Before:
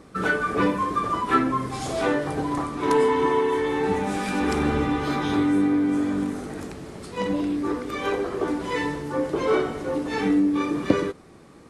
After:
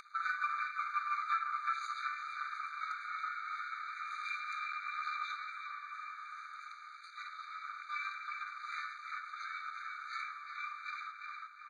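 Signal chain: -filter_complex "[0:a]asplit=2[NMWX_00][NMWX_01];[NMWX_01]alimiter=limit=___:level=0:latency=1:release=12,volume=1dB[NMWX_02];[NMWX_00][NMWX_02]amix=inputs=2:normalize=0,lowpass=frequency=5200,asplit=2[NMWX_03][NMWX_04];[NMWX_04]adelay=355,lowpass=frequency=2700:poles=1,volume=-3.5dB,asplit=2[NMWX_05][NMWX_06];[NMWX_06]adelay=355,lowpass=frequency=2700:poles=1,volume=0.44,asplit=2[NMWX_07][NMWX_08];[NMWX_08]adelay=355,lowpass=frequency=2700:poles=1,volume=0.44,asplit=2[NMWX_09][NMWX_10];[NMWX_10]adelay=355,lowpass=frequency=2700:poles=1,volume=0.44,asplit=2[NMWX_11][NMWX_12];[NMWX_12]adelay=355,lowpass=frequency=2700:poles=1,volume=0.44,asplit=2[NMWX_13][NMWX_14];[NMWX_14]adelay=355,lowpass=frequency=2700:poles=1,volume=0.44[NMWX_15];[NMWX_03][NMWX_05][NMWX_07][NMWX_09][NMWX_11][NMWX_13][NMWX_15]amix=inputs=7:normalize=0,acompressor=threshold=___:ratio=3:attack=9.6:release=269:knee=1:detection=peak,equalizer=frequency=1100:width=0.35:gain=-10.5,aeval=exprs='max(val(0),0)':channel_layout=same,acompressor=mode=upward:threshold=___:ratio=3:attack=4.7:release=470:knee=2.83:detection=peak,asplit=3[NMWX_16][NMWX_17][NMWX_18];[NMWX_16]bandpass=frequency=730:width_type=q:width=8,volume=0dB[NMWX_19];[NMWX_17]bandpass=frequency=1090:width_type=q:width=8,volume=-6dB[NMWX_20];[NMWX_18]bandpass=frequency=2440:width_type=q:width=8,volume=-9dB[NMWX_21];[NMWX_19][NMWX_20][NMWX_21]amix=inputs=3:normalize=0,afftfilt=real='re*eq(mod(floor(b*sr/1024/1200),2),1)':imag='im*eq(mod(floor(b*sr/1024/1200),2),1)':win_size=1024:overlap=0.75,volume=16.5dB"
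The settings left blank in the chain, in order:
-12.5dB, -15dB, -33dB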